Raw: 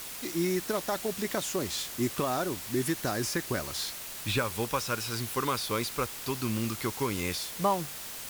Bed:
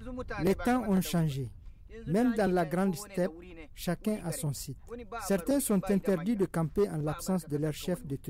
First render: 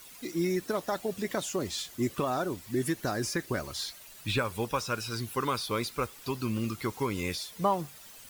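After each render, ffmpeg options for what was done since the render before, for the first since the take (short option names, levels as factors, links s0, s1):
-af "afftdn=nr=12:nf=-41"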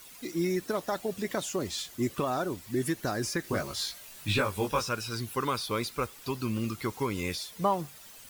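-filter_complex "[0:a]asettb=1/sr,asplit=3[s0][s1][s2];[s0]atrim=end=3.424[s3];[s1]atrim=start=3.42:end=4.89,asetpts=PTS-STARTPTS,afade=t=in:d=0.004:c=qsin,afade=t=out:st=1.466:d=0.004:c=qsin,asplit=2[s4][s5];[s5]adelay=20,volume=0.794[s6];[s4][s6]amix=inputs=2:normalize=0,atrim=end_sample=64827[s7];[s2]atrim=start=4.886[s8];[s3][s7]acrossfade=d=0.004:c1=hsin:c2=qsin[s9];[s9][s8]acrossfade=d=0.004:c1=qsin:c2=hsin"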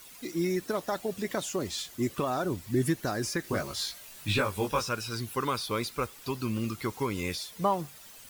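-filter_complex "[0:a]asettb=1/sr,asplit=3[s0][s1][s2];[s0]atrim=end=2.444[s3];[s1]atrim=start=2.44:end=2.96,asetpts=PTS-STARTPTS,afade=t=in:d=0.004:c=qsin,afade=t=out:st=0.516:d=0.004:c=qsin,equalizer=f=95:w=0.47:g=7[s4];[s2]atrim=start=2.956[s5];[s3][s4]acrossfade=d=0.004:c1=hsin:c2=qsin[s6];[s6][s5]acrossfade=d=0.004:c1=qsin:c2=hsin"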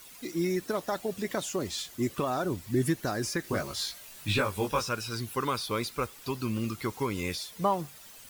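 -af anull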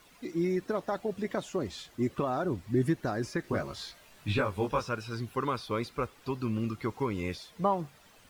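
-af "lowpass=f=1700:p=1"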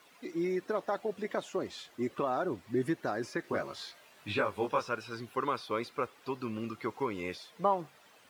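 -af "highpass=98,bass=f=250:g=-10,treble=f=4000:g=-4"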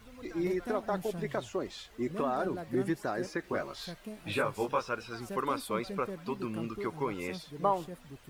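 -filter_complex "[1:a]volume=0.237[s0];[0:a][s0]amix=inputs=2:normalize=0"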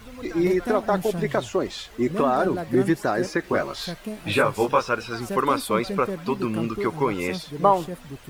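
-af "volume=3.35"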